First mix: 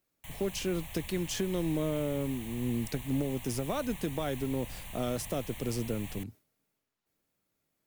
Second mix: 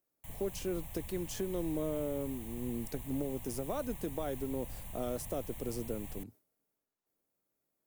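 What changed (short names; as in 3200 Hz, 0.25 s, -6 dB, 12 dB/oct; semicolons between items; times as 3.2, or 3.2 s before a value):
speech: add tone controls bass -10 dB, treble -1 dB; master: add bell 2800 Hz -10.5 dB 2.7 oct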